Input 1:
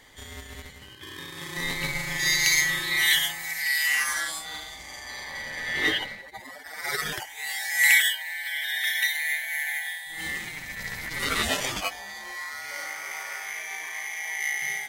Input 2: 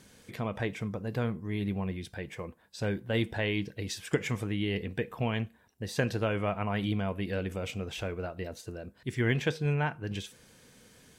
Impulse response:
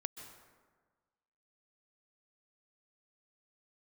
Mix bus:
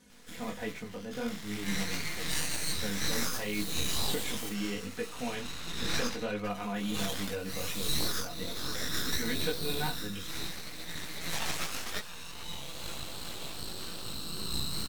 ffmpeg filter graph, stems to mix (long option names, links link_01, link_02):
-filter_complex "[0:a]flanger=delay=17.5:depth=5.6:speed=2.5,aeval=exprs='abs(val(0))':channel_layout=same,adelay=100,volume=0.5dB[link_01];[1:a]flanger=delay=18.5:depth=6.7:speed=1.4,aecho=1:1:4.1:0.91,volume=-4dB[link_02];[link_01][link_02]amix=inputs=2:normalize=0,alimiter=limit=-18dB:level=0:latency=1:release=388"